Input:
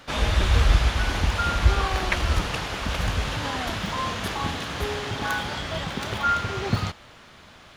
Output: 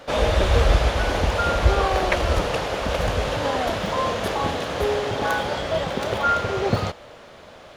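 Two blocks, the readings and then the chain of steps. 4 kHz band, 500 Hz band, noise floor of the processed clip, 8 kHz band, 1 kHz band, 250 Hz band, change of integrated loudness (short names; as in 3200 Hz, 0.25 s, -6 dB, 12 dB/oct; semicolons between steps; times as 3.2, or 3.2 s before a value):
+0.5 dB, +10.5 dB, -45 dBFS, 0.0 dB, +4.0 dB, +3.0 dB, +3.0 dB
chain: bell 540 Hz +13 dB 1.1 oct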